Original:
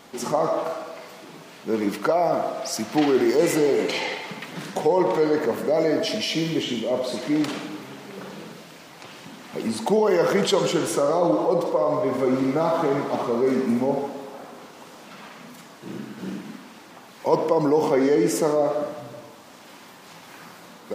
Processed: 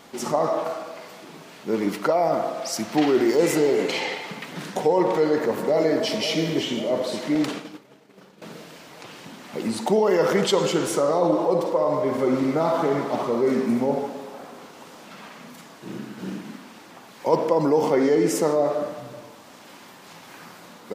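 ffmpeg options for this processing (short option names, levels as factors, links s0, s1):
-filter_complex "[0:a]asplit=2[s0][s1];[s1]afade=t=in:st=5.03:d=0.01,afade=t=out:st=6.11:d=0.01,aecho=0:1:540|1080|1620|2160|2700|3240|3780:0.281838|0.169103|0.101462|0.0608771|0.0365262|0.0219157|0.0131494[s2];[s0][s2]amix=inputs=2:normalize=0,asettb=1/sr,asplit=3[s3][s4][s5];[s3]atrim=end=7.354[s6];[s4]atrim=start=7.35:end=8.42,asetpts=PTS-STARTPTS,afade=t=in:d=0.004:c=qsin,afade=t=out:st=1.066:d=0.004:c=qsin,agate=range=0.0224:threshold=0.0398:ratio=3:release=100:detection=peak[s7];[s5]atrim=start=8.416[s8];[s6][s7]acrossfade=d=0.004:c1=hsin:c2=qsin[s9];[s9][s8]acrossfade=d=0.004:c1=qsin:c2=hsin"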